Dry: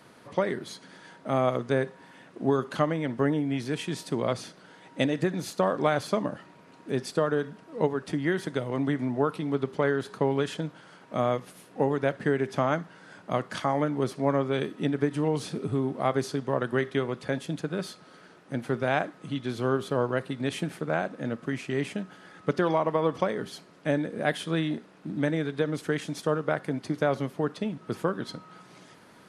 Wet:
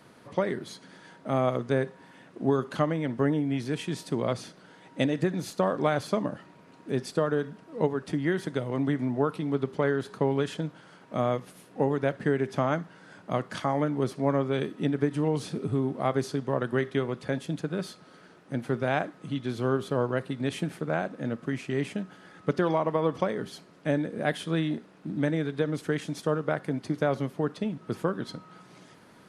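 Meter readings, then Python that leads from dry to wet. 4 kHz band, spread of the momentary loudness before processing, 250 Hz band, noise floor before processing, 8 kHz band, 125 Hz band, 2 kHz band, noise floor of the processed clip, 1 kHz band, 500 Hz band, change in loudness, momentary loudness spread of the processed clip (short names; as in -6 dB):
-2.0 dB, 9 LU, +0.5 dB, -54 dBFS, -2.0 dB, +1.0 dB, -2.0 dB, -55 dBFS, -1.5 dB, -0.5 dB, -0.5 dB, 9 LU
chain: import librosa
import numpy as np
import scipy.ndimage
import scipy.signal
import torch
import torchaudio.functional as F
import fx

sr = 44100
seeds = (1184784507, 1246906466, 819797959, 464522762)

y = fx.low_shelf(x, sr, hz=370.0, db=3.5)
y = F.gain(torch.from_numpy(y), -2.0).numpy()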